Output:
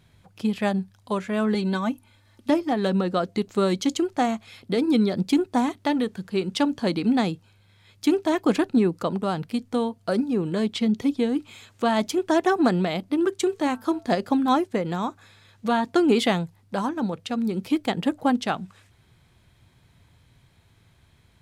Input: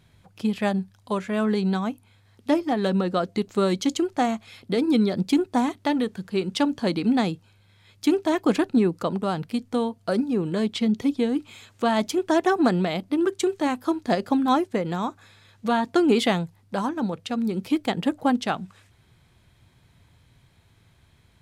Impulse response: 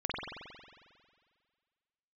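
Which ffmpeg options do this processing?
-filter_complex "[0:a]asettb=1/sr,asplit=3[link_01][link_02][link_03];[link_01]atrim=end=1.544[link_04];[link_02]atrim=start=1.54:end=2.5,asetpts=PTS-STARTPTS,afade=type=in:duration=0.004:curve=qsin,afade=type=out:start_time=0.956:duration=0.004:curve=qsin,aecho=1:1:3.4:0.78,atrim=end_sample=42336[link_05];[link_03]atrim=start=2.496[link_06];[link_04][link_05]acrossfade=duration=0.004:curve1=hsin:curve2=qsin[link_07];[link_07][link_06]acrossfade=duration=0.004:curve1=qsin:curve2=hsin,asettb=1/sr,asplit=3[link_08][link_09][link_10];[link_08]atrim=end=13.354[link_11];[link_09]atrim=start=13.35:end=14.13,asetpts=PTS-STARTPTS,afade=type=in:duration=0.004:curve=qsin,afade=type=out:start_time=0.776:duration=0.004:curve=qsin,bandreject=frequency=223.4:width_type=h:width=4,bandreject=frequency=446.8:width_type=h:width=4,bandreject=frequency=670.2:width_type=h:width=4,bandreject=frequency=893.6:width_type=h:width=4,bandreject=frequency=1117:width_type=h:width=4,bandreject=frequency=1340.4:width_type=h:width=4,bandreject=frequency=1563.8:width_type=h:width=4[link_12];[link_10]atrim=start=14.126[link_13];[link_11][link_12]acrossfade=duration=0.004:curve1=hsin:curve2=qsin[link_14];[link_14][link_13]acrossfade=duration=0.004:curve1=qsin:curve2=hsin"

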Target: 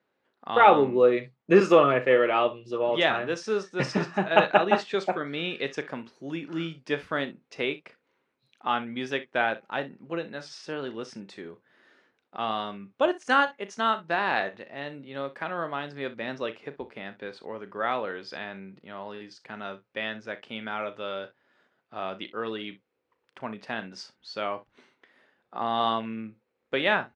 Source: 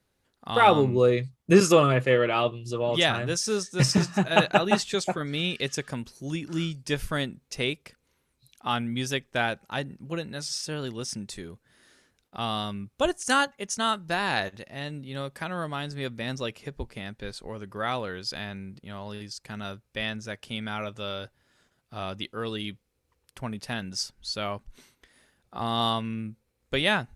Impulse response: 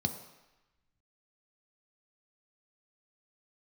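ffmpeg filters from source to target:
-af "highpass=290,lowpass=2400,aecho=1:1:36|62:0.211|0.141,volume=2dB"

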